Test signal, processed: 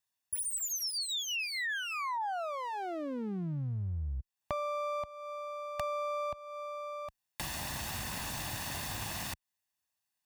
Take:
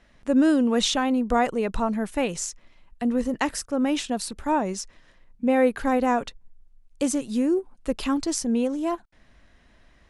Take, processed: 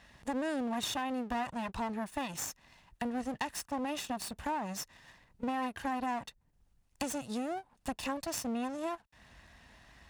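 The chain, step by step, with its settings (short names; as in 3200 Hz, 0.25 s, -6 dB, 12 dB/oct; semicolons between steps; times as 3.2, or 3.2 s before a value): minimum comb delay 1.1 ms; HPF 65 Hz 12 dB/oct; bell 290 Hz -3 dB 1.9 oct; compressor 3:1, threshold -42 dBFS; gain +4 dB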